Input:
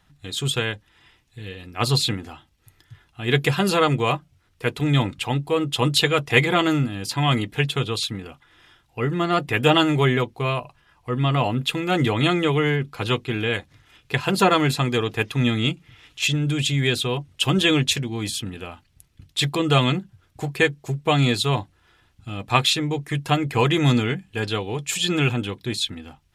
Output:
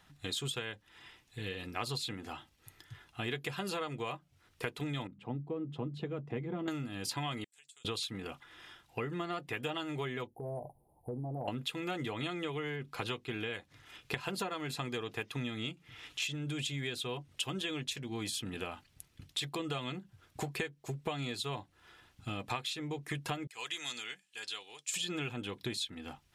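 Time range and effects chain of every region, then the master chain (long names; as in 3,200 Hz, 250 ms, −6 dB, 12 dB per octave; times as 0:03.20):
0:05.07–0:06.68: resonant band-pass 190 Hz, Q 1.3 + mains-hum notches 50/100/150/200 Hz
0:07.44–0:07.85: resonant band-pass 7,800 Hz, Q 5.9 + downward compressor 4 to 1, threshold −55 dBFS
0:10.27–0:11.48: Chebyshev band-stop filter 830–9,500 Hz, order 5 + downward compressor, threshold −32 dBFS
0:23.47–0:24.94: resonant band-pass 7,900 Hz, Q 1.1 + high-shelf EQ 7,500 Hz −6.5 dB
whole clip: low-shelf EQ 140 Hz −9.5 dB; downward compressor 16 to 1, threshold −34 dBFS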